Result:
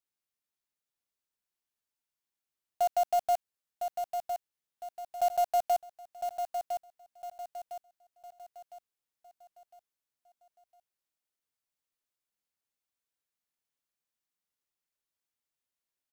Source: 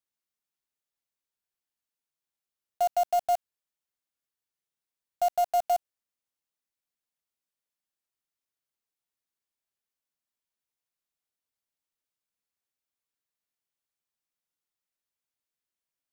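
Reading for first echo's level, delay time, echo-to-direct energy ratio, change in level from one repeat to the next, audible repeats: -7.0 dB, 1.007 s, -6.0 dB, -8.0 dB, 4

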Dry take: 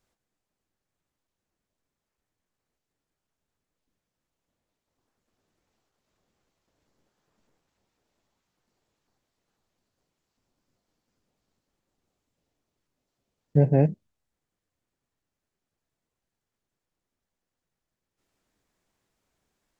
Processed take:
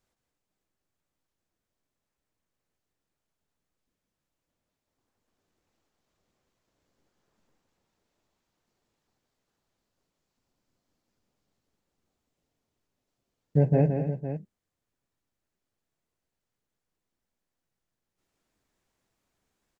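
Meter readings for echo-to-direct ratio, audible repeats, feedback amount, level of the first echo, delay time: -4.5 dB, 3, no steady repeat, -7.0 dB, 0.166 s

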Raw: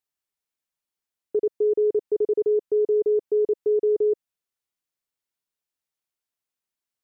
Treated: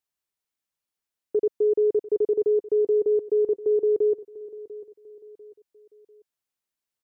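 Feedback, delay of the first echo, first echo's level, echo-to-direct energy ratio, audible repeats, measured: 39%, 0.695 s, -17.0 dB, -16.5 dB, 3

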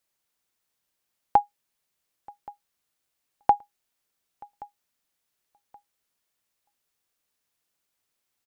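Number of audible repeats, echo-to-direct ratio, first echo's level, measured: 2, -22.5 dB, -23.0 dB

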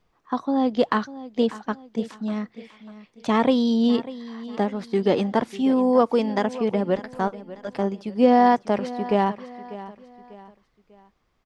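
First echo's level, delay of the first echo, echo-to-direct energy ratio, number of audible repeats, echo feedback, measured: -16.0 dB, 0.595 s, -15.5 dB, 3, 38%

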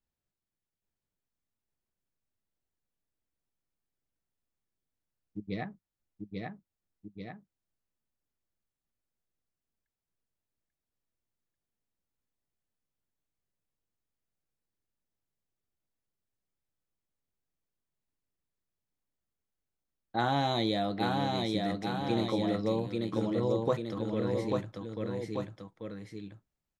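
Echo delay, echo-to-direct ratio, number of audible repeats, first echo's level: 0.84 s, -1.5 dB, 2, -3.0 dB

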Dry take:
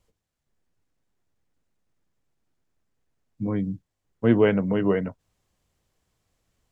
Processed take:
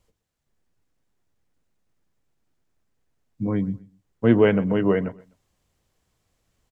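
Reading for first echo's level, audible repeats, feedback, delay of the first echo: -21.0 dB, 2, 30%, 0.125 s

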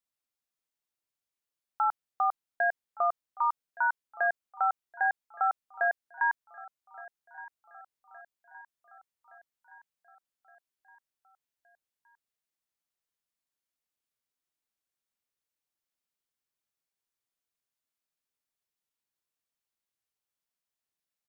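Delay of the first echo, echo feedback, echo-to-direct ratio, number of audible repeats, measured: 1.168 s, 58%, -18.0 dB, 4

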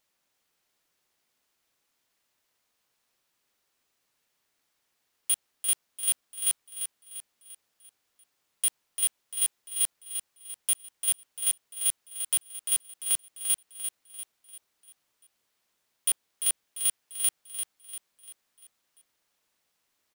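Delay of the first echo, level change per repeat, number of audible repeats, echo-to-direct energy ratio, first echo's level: 0.345 s, -7.0 dB, 4, -7.0 dB, -8.0 dB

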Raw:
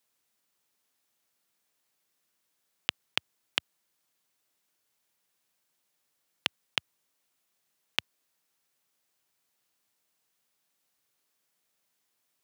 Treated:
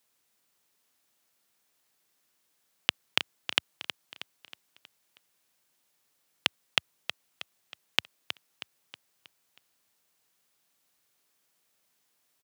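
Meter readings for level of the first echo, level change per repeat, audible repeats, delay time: -10.0 dB, -6.5 dB, 4, 0.318 s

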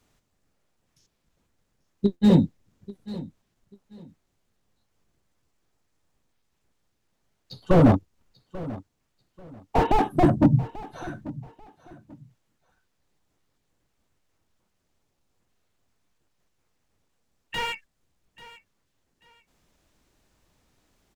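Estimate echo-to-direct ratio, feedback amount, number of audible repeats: -17.5 dB, 26%, 2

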